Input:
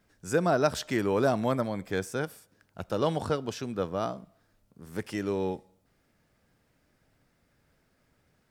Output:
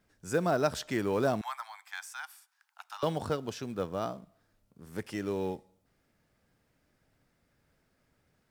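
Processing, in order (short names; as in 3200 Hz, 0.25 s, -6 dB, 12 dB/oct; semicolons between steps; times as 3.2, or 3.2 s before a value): 1.41–3.03 steep high-pass 790 Hz 72 dB/oct; in parallel at -6.5 dB: short-mantissa float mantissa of 2-bit; on the sum: gain -6.5 dB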